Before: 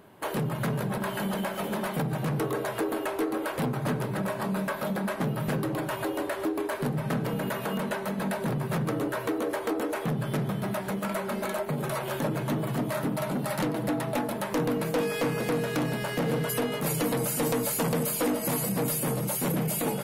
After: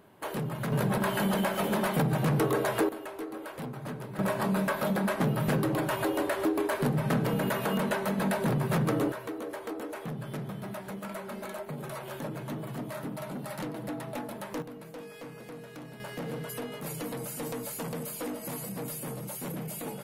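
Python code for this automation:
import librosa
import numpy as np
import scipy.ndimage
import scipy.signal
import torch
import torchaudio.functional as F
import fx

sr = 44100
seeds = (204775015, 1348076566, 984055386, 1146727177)

y = fx.gain(x, sr, db=fx.steps((0.0, -4.0), (0.72, 2.5), (2.89, -9.5), (4.19, 1.5), (9.12, -8.0), (14.62, -16.5), (16.0, -9.0)))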